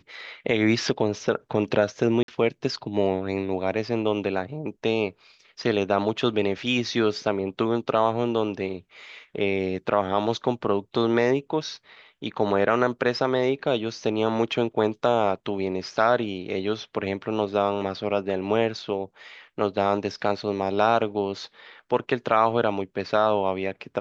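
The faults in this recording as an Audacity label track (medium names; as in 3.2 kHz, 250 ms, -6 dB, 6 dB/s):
2.230000	2.280000	dropout 52 ms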